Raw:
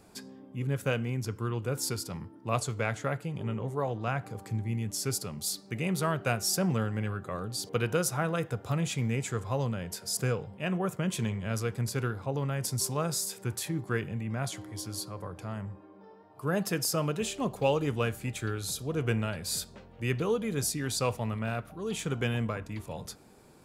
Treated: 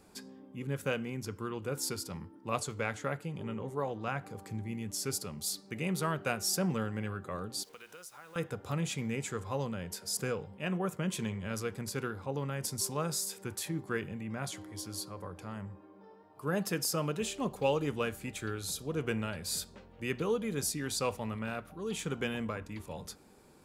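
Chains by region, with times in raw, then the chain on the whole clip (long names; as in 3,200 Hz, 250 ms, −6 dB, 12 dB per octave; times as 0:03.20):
0:07.63–0:08.36: high-pass filter 1,200 Hz 6 dB per octave + downward compressor 3 to 1, threshold −48 dBFS + bit-depth reduction 10 bits, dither none
whole clip: parametric band 120 Hz −12.5 dB 0.22 octaves; notch filter 670 Hz, Q 12; level −2.5 dB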